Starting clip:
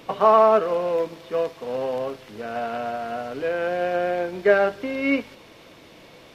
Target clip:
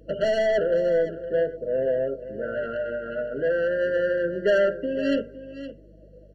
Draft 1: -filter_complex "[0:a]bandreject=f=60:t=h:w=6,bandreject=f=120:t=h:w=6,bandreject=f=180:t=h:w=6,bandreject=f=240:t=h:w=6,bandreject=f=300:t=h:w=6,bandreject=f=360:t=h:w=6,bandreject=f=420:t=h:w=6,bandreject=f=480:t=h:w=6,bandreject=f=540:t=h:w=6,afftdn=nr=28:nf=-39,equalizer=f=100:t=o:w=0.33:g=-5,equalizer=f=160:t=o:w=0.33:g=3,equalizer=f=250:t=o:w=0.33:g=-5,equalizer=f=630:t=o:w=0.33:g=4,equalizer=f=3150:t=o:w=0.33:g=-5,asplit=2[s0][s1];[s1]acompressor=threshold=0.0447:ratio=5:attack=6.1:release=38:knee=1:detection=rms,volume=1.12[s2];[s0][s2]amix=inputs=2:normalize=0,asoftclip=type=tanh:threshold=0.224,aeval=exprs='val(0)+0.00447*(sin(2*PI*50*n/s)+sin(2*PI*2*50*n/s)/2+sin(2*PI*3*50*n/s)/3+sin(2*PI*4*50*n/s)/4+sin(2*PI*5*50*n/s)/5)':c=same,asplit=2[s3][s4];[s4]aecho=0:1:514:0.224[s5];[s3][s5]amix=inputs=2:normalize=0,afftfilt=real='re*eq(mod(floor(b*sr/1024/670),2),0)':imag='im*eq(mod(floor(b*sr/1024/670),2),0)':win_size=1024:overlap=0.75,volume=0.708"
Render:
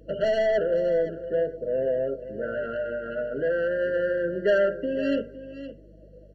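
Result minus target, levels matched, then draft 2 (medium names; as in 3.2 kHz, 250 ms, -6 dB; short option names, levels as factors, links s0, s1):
compression: peak gain reduction +8 dB
-filter_complex "[0:a]bandreject=f=60:t=h:w=6,bandreject=f=120:t=h:w=6,bandreject=f=180:t=h:w=6,bandreject=f=240:t=h:w=6,bandreject=f=300:t=h:w=6,bandreject=f=360:t=h:w=6,bandreject=f=420:t=h:w=6,bandreject=f=480:t=h:w=6,bandreject=f=540:t=h:w=6,afftdn=nr=28:nf=-39,equalizer=f=100:t=o:w=0.33:g=-5,equalizer=f=160:t=o:w=0.33:g=3,equalizer=f=250:t=o:w=0.33:g=-5,equalizer=f=630:t=o:w=0.33:g=4,equalizer=f=3150:t=o:w=0.33:g=-5,asplit=2[s0][s1];[s1]acompressor=threshold=0.141:ratio=5:attack=6.1:release=38:knee=1:detection=rms,volume=1.12[s2];[s0][s2]amix=inputs=2:normalize=0,asoftclip=type=tanh:threshold=0.224,aeval=exprs='val(0)+0.00447*(sin(2*PI*50*n/s)+sin(2*PI*2*50*n/s)/2+sin(2*PI*3*50*n/s)/3+sin(2*PI*4*50*n/s)/4+sin(2*PI*5*50*n/s)/5)':c=same,asplit=2[s3][s4];[s4]aecho=0:1:514:0.224[s5];[s3][s5]amix=inputs=2:normalize=0,afftfilt=real='re*eq(mod(floor(b*sr/1024/670),2),0)':imag='im*eq(mod(floor(b*sr/1024/670),2),0)':win_size=1024:overlap=0.75,volume=0.708"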